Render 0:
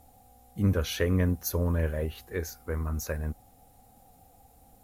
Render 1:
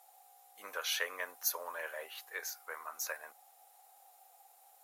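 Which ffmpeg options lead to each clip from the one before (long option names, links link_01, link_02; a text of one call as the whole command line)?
ffmpeg -i in.wav -af "highpass=frequency=740:width=0.5412,highpass=frequency=740:width=1.3066" out.wav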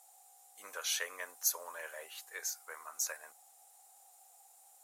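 ffmpeg -i in.wav -af "equalizer=frequency=7800:width_type=o:width=1:gain=13,volume=-4dB" out.wav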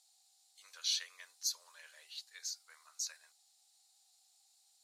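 ffmpeg -i in.wav -af "bandpass=frequency=4300:width_type=q:width=4.3:csg=0,volume=8dB" out.wav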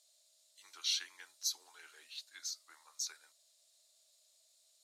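ffmpeg -i in.wav -af "afreqshift=-150" out.wav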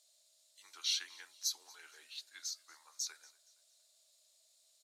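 ffmpeg -i in.wav -af "aecho=1:1:234|468|702:0.0708|0.0297|0.0125" out.wav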